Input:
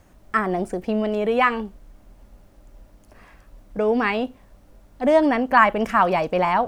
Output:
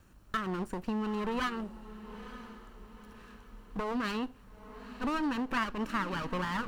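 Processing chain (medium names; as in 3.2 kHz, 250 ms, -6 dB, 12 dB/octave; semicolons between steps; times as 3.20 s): comb filter that takes the minimum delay 0.71 ms; compression 2.5:1, threshold -27 dBFS, peak gain reduction 11 dB; on a send: echo that smears into a reverb 922 ms, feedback 43%, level -14 dB; on the sum: trim -5.5 dB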